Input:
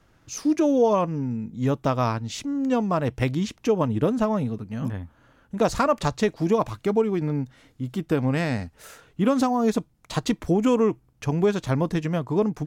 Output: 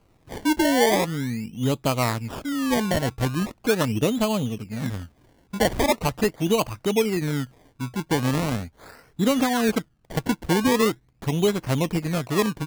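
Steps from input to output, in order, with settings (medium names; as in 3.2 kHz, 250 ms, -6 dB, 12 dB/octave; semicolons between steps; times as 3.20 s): decimation with a swept rate 24×, swing 100% 0.41 Hz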